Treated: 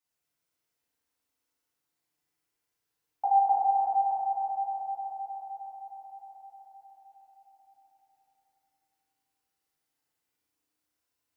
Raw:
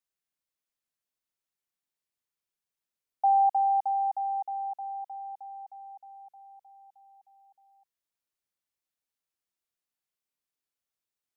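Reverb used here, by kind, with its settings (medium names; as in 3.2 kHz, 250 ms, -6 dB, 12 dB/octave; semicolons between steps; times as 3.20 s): FDN reverb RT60 3.4 s, high-frequency decay 0.45×, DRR -9.5 dB; trim -1.5 dB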